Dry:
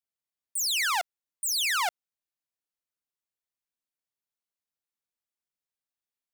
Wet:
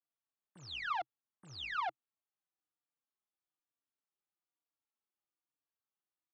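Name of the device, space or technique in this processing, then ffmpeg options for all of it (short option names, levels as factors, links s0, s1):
barber-pole flanger into a guitar amplifier: -filter_complex "[0:a]asplit=2[s0][s1];[s1]adelay=3.7,afreqshift=-1.1[s2];[s0][s2]amix=inputs=2:normalize=1,asoftclip=type=tanh:threshold=0.02,highpass=100,equalizer=f=130:t=q:w=4:g=6,equalizer=f=320:t=q:w=4:g=9,equalizer=f=800:t=q:w=4:g=6,equalizer=f=1200:t=q:w=4:g=7,equalizer=f=2200:t=q:w=4:g=-4,lowpass=f=3500:w=0.5412,lowpass=f=3500:w=1.3066,volume=0.75"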